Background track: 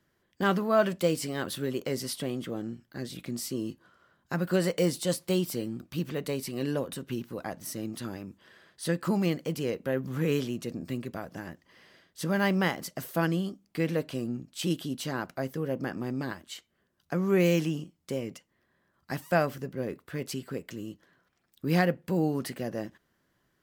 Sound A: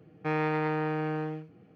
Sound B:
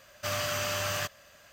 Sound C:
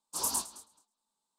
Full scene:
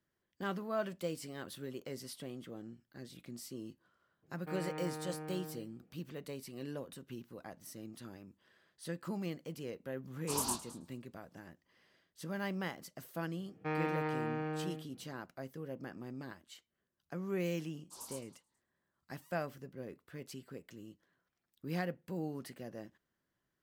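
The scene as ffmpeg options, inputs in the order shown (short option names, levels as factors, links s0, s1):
-filter_complex "[1:a]asplit=2[s0][s1];[3:a]asplit=2[s2][s3];[0:a]volume=0.237[s4];[s0]highshelf=f=3100:g=-9[s5];[s2]bass=f=250:g=4,treble=f=4000:g=-5[s6];[s3]asoftclip=type=tanh:threshold=0.106[s7];[s5]atrim=end=1.75,asetpts=PTS-STARTPTS,volume=0.211,afade=t=in:d=0.02,afade=t=out:st=1.73:d=0.02,adelay=4220[s8];[s6]atrim=end=1.38,asetpts=PTS-STARTPTS,volume=0.944,afade=t=in:d=0.004:c=hsin,afade=t=out:st=1.376:d=0.004:c=hsin,adelay=10140[s9];[s1]atrim=end=1.75,asetpts=PTS-STARTPTS,volume=0.447,afade=t=in:d=0.004:c=hsin,afade=t=out:st=1.746:d=0.004:c=hsin,adelay=13400[s10];[s7]atrim=end=1.38,asetpts=PTS-STARTPTS,volume=0.15,afade=t=in:d=0.004:c=hsin,afade=t=out:st=1.376:d=0.004:c=hsin,adelay=17770[s11];[s4][s8][s9][s10][s11]amix=inputs=5:normalize=0"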